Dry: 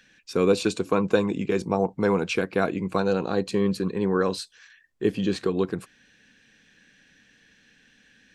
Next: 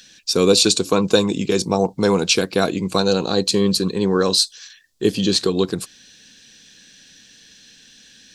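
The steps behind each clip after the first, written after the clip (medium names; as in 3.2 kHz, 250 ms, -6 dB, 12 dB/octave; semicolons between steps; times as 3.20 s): resonant high shelf 3 kHz +11.5 dB, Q 1.5; trim +5.5 dB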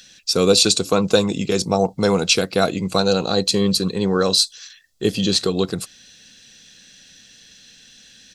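comb 1.5 ms, depth 33%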